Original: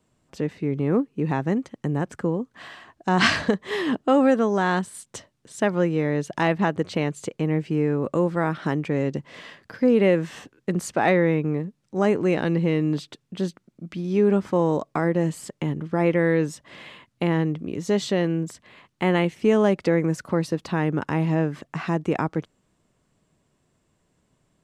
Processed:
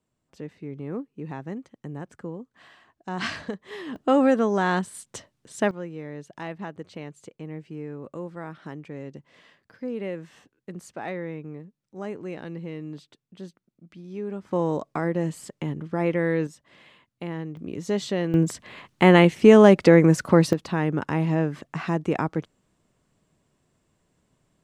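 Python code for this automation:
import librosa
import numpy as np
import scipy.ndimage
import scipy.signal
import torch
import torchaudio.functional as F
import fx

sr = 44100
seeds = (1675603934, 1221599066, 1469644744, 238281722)

y = fx.gain(x, sr, db=fx.steps((0.0, -11.0), (3.96, -1.0), (5.71, -13.5), (14.51, -3.5), (16.47, -10.5), (17.57, -3.5), (18.34, 6.5), (20.53, -1.0)))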